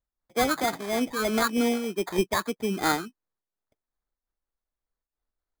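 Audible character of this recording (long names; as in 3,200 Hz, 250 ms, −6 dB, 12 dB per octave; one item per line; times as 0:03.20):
phaser sweep stages 6, 3.2 Hz, lowest notch 700–2,300 Hz
aliases and images of a low sample rate 2,800 Hz, jitter 0%
amplitude modulation by smooth noise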